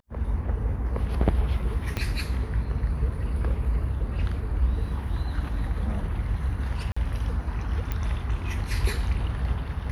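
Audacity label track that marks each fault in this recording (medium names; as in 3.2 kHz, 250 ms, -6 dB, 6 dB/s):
1.970000	1.970000	pop -14 dBFS
6.920000	6.960000	dropout 45 ms
7.920000	7.920000	pop -16 dBFS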